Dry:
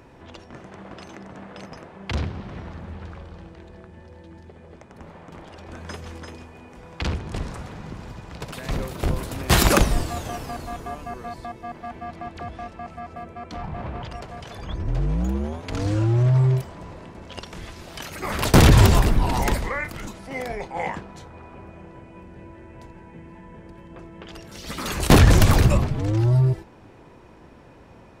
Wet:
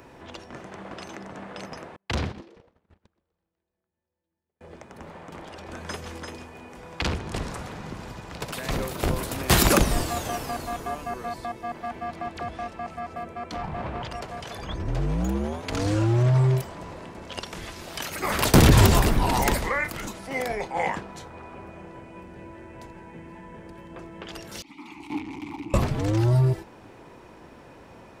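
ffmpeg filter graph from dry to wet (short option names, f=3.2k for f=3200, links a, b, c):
-filter_complex "[0:a]asettb=1/sr,asplit=3[a][b][c];[a]atrim=end=1.964[d];[b]atrim=start=1.96:end=4.61,asetpts=PTS-STARTPTS,afade=t=in:d=0.004:c=qsin,afade=t=out:st=2.646:d=0.004:c=qsin,agate=range=-41dB:threshold=-32dB:ratio=16:release=100:detection=peak,asplit=4[e][f][g][h];[f]adelay=124,afreqshift=130,volume=-20.5dB[i];[g]adelay=248,afreqshift=260,volume=-27.6dB[j];[h]adelay=372,afreqshift=390,volume=-34.8dB[k];[e][i][j][k]amix=inputs=4:normalize=0,atrim=end_sample=116865[l];[c]atrim=start=4.606[m];[d][l]acrossfade=d=0.004:c1=hsin:c2=qsin[n];[n][m]acrossfade=d=0.004:c1=qsin:c2=hsin,asettb=1/sr,asplit=3[o][p][q];[o]atrim=end=24.624[r];[p]atrim=start=24.62:end=25.74,asetpts=PTS-STARTPTS,afade=t=in:d=0.004:c=qsin,afade=t=out:st=1.116:d=0.004:c=qsin,equalizer=f=490:t=o:w=0.69:g=-12,volume=18dB,asoftclip=hard,volume=-18dB,asplit=3[s][t][u];[s]bandpass=f=300:t=q:w=8,volume=0dB[v];[t]bandpass=f=870:t=q:w=8,volume=-6dB[w];[u]bandpass=f=2.24k:t=q:w=8,volume=-9dB[x];[v][w][x]amix=inputs=3:normalize=0[y];[q]atrim=start=25.736[z];[r][y]acrossfade=d=0.004:c1=hsin:c2=qsin[aa];[aa][z]acrossfade=d=0.004:c1=qsin:c2=hsin,highshelf=f=9.9k:g=5.5,acrossover=split=380[ab][ac];[ac]acompressor=threshold=-22dB:ratio=2.5[ad];[ab][ad]amix=inputs=2:normalize=0,lowshelf=f=180:g=-7,volume=2.5dB"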